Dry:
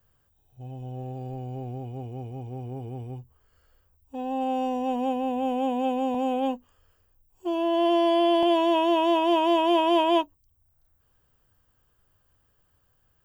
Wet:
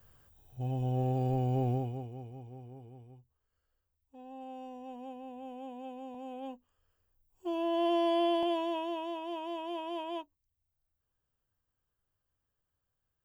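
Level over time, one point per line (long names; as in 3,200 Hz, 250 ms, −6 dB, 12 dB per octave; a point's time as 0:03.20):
0:01.72 +5 dB
0:02.09 −7 dB
0:03.18 −18 dB
0:06.19 −18 dB
0:07.49 −7 dB
0:08.24 −7 dB
0:09.17 −17 dB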